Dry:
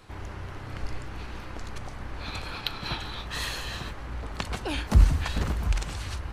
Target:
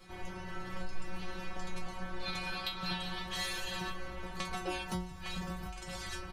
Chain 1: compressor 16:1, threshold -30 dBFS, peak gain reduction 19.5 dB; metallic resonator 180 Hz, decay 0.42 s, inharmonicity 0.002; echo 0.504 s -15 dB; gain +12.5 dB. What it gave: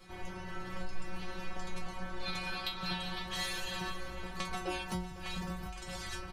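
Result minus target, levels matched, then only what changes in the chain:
echo-to-direct +11.5 dB
change: echo 0.504 s -26.5 dB

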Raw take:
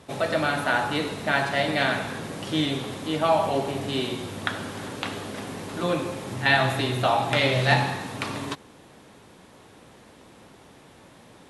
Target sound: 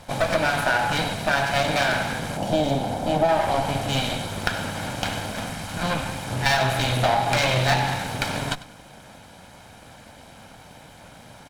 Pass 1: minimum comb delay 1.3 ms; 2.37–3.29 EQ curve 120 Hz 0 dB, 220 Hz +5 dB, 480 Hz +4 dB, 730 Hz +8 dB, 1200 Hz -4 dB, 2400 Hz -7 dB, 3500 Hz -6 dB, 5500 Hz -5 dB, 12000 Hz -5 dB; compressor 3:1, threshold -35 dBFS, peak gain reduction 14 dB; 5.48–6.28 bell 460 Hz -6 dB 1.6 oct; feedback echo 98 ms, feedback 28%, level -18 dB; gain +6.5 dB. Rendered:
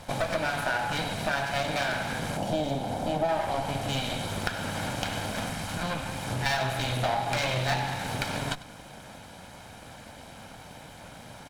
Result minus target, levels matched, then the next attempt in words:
compressor: peak gain reduction +7 dB
minimum comb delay 1.3 ms; 2.37–3.29 EQ curve 120 Hz 0 dB, 220 Hz +5 dB, 480 Hz +4 dB, 730 Hz +8 dB, 1200 Hz -4 dB, 2400 Hz -7 dB, 3500 Hz -6 dB, 5500 Hz -5 dB, 12000 Hz -5 dB; compressor 3:1, threshold -24.5 dBFS, peak gain reduction 7 dB; 5.48–6.28 bell 460 Hz -6 dB 1.6 oct; feedback echo 98 ms, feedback 28%, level -18 dB; gain +6.5 dB

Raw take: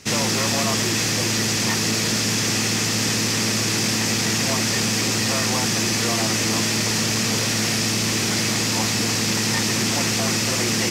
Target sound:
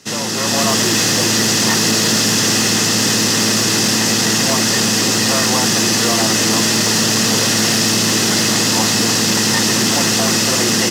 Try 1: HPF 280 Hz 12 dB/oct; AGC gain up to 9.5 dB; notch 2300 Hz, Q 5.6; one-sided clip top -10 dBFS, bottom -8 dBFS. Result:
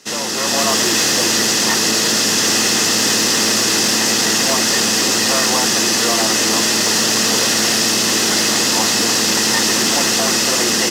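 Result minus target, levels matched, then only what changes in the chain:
125 Hz band -8.5 dB
change: HPF 140 Hz 12 dB/oct

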